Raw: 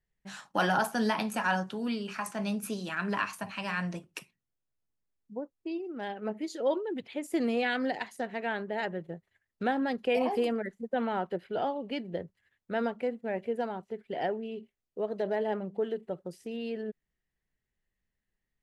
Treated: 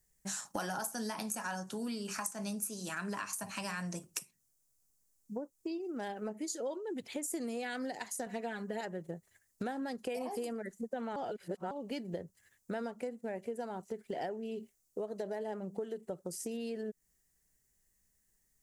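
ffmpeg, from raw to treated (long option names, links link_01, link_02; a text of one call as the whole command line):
ffmpeg -i in.wav -filter_complex "[0:a]asettb=1/sr,asplit=3[link_01][link_02][link_03];[link_01]atrim=end=8.264[link_04];[link_02]atrim=start=8.26:end=8.81,asetpts=PTS-STARTPTS,afade=type=in:duration=0.004:curve=qsin,afade=type=out:start_time=0.546:duration=0.004:curve=qsin,aecho=1:1:4.1:0.95,atrim=end_sample=24255[link_05];[link_03]atrim=start=8.806[link_06];[link_04][link_05]acrossfade=duration=0.004:curve1=hsin:curve2=qsin[link_07];[link_07][link_06]acrossfade=duration=0.004:curve1=qsin:curve2=hsin,asplit=3[link_08][link_09][link_10];[link_08]atrim=end=11.162[link_11];[link_09]atrim=start=11.158:end=11.712,asetpts=PTS-STARTPTS,areverse[link_12];[link_10]atrim=start=11.708[link_13];[link_11][link_12]acrossfade=duration=0.004:curve1=hsin:curve2=hsin[link_14];[link_14][link_13]acrossfade=duration=0.004:curve1=hsin:curve2=hsin,highshelf=frequency=4800:width_type=q:width=1.5:gain=14,acompressor=threshold=-41dB:ratio=6,volume=4.5dB" out.wav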